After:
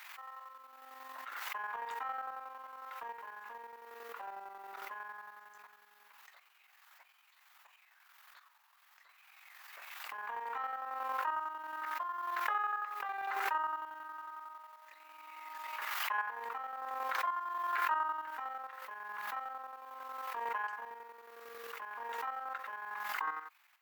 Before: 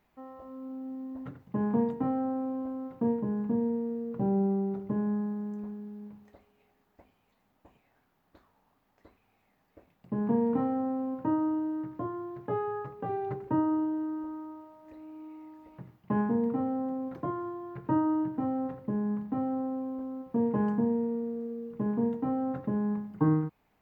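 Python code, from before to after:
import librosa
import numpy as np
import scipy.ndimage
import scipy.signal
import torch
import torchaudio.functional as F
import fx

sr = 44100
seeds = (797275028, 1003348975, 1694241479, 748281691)

y = scipy.signal.sosfilt(scipy.signal.butter(4, 1200.0, 'highpass', fs=sr, output='sos'), x)
y = fx.chopper(y, sr, hz=11.0, depth_pct=65, duty_pct=35)
y = fx.pre_swell(y, sr, db_per_s=21.0)
y = y * 10.0 ** (10.5 / 20.0)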